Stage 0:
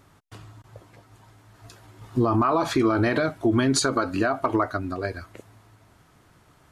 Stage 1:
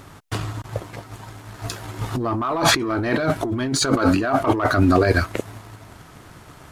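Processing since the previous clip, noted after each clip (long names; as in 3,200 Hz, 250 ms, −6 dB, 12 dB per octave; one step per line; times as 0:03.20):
leveller curve on the samples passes 1
compressor whose output falls as the input rises −28 dBFS, ratio −1
level +8 dB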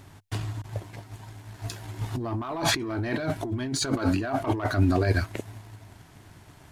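thirty-one-band graphic EQ 100 Hz +6 dB, 500 Hz −6 dB, 1,250 Hz −8 dB
level −7 dB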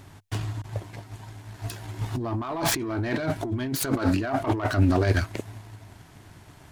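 phase distortion by the signal itself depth 0.18 ms
level +1.5 dB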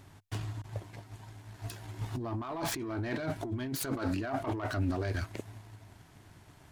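brickwall limiter −16.5 dBFS, peak gain reduction 7 dB
level −7 dB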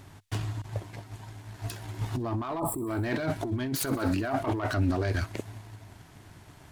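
gain on a spectral selection 0:02.59–0:02.87, 1,300–7,500 Hz −28 dB
delay with a high-pass on its return 63 ms, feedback 78%, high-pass 3,400 Hz, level −21 dB
level +5 dB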